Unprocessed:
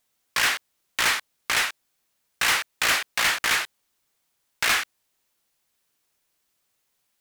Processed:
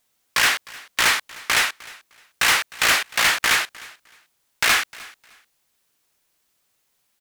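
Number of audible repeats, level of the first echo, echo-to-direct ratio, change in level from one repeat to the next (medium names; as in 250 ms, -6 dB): 2, -21.5 dB, -21.5 dB, -13.0 dB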